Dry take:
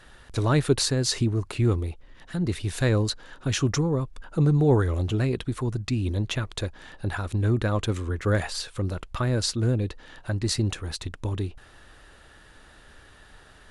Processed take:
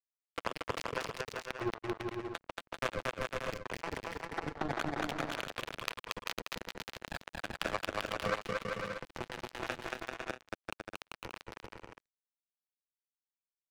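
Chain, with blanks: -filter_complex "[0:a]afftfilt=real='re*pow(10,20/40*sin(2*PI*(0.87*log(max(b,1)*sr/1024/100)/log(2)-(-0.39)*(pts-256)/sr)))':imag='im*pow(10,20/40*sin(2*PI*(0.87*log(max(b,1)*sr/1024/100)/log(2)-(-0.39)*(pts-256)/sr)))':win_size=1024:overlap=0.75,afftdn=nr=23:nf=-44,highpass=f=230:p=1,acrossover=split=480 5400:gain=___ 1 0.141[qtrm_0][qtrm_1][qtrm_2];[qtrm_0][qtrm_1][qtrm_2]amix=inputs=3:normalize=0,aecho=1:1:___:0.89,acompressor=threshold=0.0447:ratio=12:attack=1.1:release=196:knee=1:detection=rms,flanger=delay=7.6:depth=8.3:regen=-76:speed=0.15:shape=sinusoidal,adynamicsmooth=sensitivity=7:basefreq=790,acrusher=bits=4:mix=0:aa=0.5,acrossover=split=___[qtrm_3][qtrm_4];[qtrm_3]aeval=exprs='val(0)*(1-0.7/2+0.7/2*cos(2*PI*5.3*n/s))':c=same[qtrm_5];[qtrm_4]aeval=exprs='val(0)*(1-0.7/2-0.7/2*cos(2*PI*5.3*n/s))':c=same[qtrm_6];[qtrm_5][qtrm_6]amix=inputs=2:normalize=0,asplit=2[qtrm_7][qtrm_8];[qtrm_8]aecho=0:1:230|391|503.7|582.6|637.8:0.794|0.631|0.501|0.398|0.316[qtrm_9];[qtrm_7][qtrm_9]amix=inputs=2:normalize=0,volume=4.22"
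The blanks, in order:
0.0794, 6, 460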